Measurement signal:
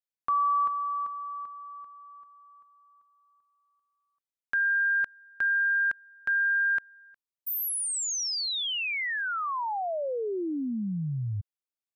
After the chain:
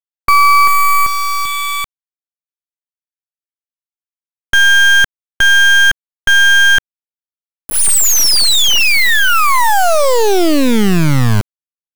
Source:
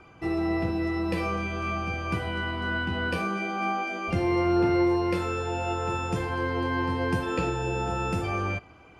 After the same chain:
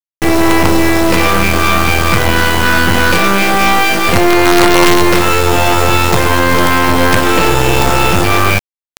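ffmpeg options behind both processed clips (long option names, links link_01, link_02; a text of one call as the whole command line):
ffmpeg -i in.wav -af "aresample=22050,aresample=44100,acrusher=bits=4:dc=4:mix=0:aa=0.000001,apsyclip=26dB,volume=-1.5dB" out.wav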